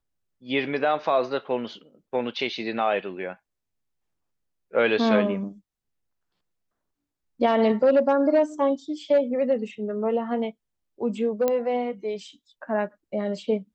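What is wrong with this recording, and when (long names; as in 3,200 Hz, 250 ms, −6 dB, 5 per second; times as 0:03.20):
0:11.48: click −11 dBFS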